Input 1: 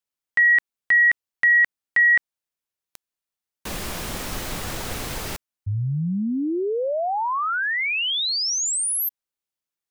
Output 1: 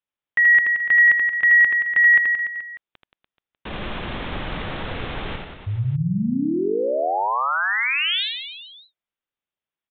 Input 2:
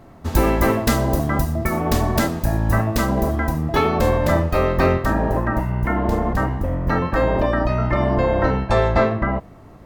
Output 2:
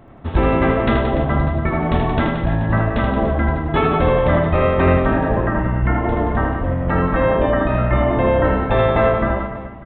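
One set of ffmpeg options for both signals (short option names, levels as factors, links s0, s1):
-af "aresample=8000,aresample=44100,aecho=1:1:80|176|291.2|429.4|595.3:0.631|0.398|0.251|0.158|0.1"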